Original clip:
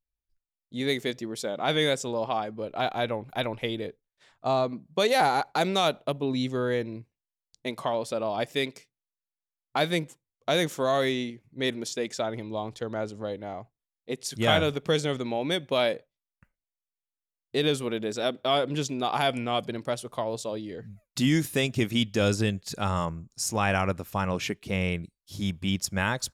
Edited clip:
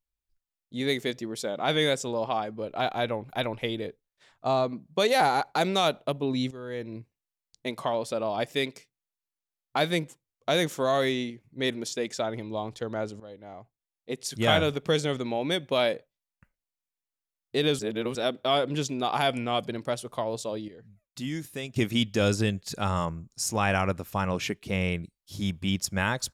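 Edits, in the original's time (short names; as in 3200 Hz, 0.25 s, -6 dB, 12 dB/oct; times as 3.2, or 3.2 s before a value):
6.51–6.97 fade in quadratic, from -13.5 dB
13.2–14.24 fade in, from -14.5 dB
17.79–18.15 reverse
20.68–21.76 gain -10 dB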